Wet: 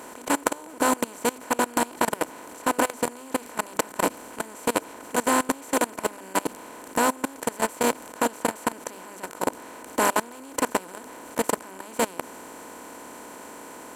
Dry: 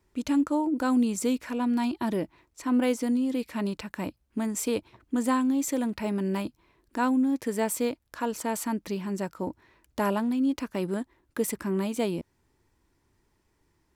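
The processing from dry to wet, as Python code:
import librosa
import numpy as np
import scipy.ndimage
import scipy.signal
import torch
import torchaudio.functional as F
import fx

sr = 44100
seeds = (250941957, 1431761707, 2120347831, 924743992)

y = fx.bin_compress(x, sr, power=0.2)
y = fx.highpass(y, sr, hz=57.0, slope=6)
y = fx.peak_eq(y, sr, hz=180.0, db=-8.0, octaves=2.0)
y = fx.hum_notches(y, sr, base_hz=50, count=9)
y = fx.level_steps(y, sr, step_db=22)
y = y * librosa.db_to_amplitude(2.0)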